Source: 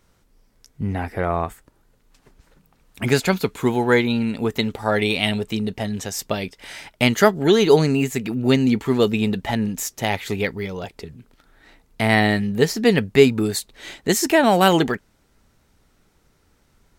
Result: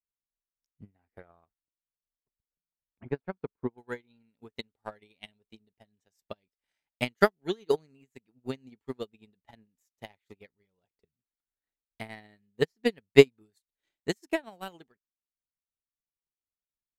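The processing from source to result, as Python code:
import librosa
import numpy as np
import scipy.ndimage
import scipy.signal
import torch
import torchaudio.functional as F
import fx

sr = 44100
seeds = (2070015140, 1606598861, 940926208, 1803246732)

y = fx.lowpass(x, sr, hz=1300.0, slope=12, at=(1.46, 3.78))
y = fx.transient(y, sr, attack_db=12, sustain_db=-1)
y = fx.upward_expand(y, sr, threshold_db=-24.0, expansion=2.5)
y = F.gain(torch.from_numpy(y), -10.5).numpy()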